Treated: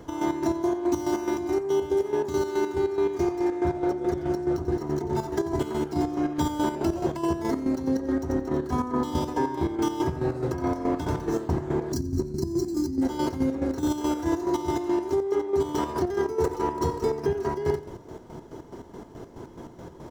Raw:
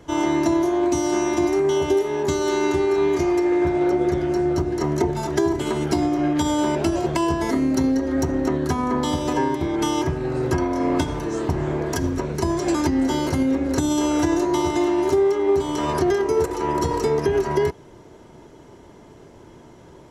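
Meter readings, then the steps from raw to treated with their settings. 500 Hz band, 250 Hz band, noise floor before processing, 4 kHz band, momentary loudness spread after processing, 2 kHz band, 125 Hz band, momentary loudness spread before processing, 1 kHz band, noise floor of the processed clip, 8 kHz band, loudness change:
-5.5 dB, -5.5 dB, -46 dBFS, -9.5 dB, 10 LU, -9.0 dB, -5.0 dB, 4 LU, -5.5 dB, -47 dBFS, -9.5 dB, -5.5 dB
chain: median filter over 5 samples; peaking EQ 2.5 kHz -7 dB 1.2 oct; on a send: feedback delay 89 ms, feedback 30%, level -11 dB; on the sum: time-frequency box 11.92–13.02 s, 400–4000 Hz -17 dB; band-stop 590 Hz, Q 17; reverse; compression 6:1, threshold -27 dBFS, peak gain reduction 12.5 dB; reverse; hum notches 50/100/150 Hz; square tremolo 4.7 Hz, depth 60%, duty 45%; trim +6 dB

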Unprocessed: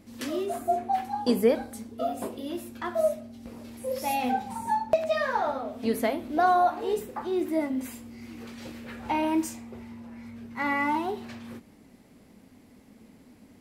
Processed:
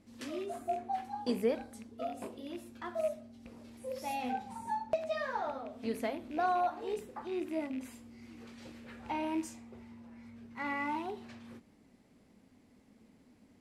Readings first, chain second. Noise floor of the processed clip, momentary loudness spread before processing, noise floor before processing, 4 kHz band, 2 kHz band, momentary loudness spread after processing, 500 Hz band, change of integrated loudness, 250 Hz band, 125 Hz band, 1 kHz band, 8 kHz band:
-65 dBFS, 19 LU, -56 dBFS, -9.0 dB, -9.0 dB, 19 LU, -9.0 dB, -9.0 dB, -9.0 dB, -9.0 dB, -9.0 dB, -10.5 dB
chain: rattle on loud lows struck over -37 dBFS, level -32 dBFS; low-pass 10 kHz 12 dB/octave; trim -9 dB

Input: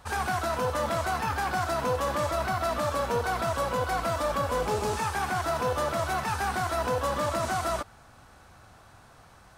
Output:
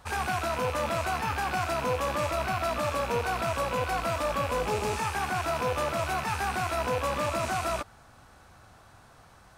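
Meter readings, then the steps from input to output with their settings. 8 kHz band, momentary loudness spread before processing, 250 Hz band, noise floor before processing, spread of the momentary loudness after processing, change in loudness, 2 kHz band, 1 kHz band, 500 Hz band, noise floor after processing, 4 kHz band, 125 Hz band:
-1.0 dB, 1 LU, -1.0 dB, -54 dBFS, 1 LU, -0.5 dB, +0.5 dB, -1.0 dB, -1.0 dB, -55 dBFS, +0.5 dB, -1.0 dB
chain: rattle on loud lows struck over -38 dBFS, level -26 dBFS; trim -1 dB

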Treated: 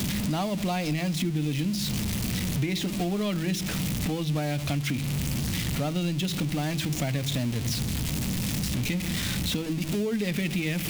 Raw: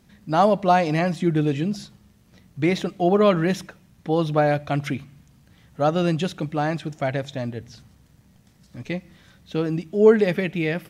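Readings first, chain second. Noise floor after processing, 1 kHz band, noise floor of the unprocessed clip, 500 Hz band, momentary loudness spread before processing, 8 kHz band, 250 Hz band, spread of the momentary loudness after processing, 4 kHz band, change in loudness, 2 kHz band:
-31 dBFS, -13.0 dB, -57 dBFS, -13.5 dB, 14 LU, +12.0 dB, -3.0 dB, 1 LU, +5.0 dB, -6.0 dB, -3.5 dB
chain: jump at every zero crossing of -25 dBFS; high-order bell 800 Hz -9.5 dB 2.5 oct; compression, threshold -28 dBFS, peak gain reduction 12.5 dB; de-hum 54.18 Hz, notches 7; three bands compressed up and down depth 40%; trim +3 dB

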